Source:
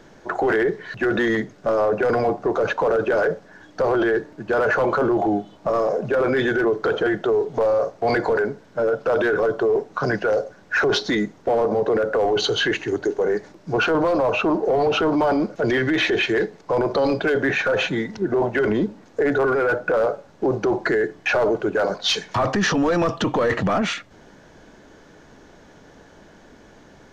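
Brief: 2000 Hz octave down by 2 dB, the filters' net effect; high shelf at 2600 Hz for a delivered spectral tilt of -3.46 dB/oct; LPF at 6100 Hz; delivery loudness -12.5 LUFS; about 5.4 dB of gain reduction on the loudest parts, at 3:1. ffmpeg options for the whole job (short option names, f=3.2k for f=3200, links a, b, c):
-af "lowpass=6.1k,equalizer=f=2k:t=o:g=-4,highshelf=f=2.6k:g=3,acompressor=threshold=-24dB:ratio=3,volume=14dB"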